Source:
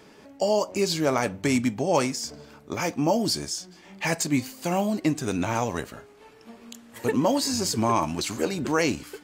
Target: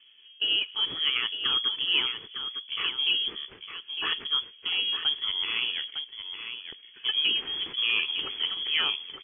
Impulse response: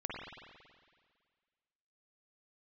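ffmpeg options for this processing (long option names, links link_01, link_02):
-af "adynamicsmooth=sensitivity=8:basefreq=820,lowpass=frequency=3000:width_type=q:width=0.5098,lowpass=frequency=3000:width_type=q:width=0.6013,lowpass=frequency=3000:width_type=q:width=0.9,lowpass=frequency=3000:width_type=q:width=2.563,afreqshift=-3500,lowshelf=frequency=510:width_type=q:width=3:gain=6.5,aecho=1:1:906:0.376,volume=-3.5dB"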